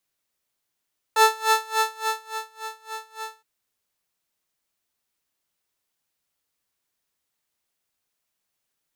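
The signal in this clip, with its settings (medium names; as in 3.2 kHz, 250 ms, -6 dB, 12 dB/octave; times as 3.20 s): synth patch with tremolo A5, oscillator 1 saw, oscillator 2 square, interval +7 st, oscillator 2 level -9 dB, filter highpass, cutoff 130 Hz, Q 2.1, filter sustain 45%, attack 3.9 ms, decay 1.29 s, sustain -17 dB, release 0.09 s, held 2.18 s, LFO 3.5 Hz, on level 23.5 dB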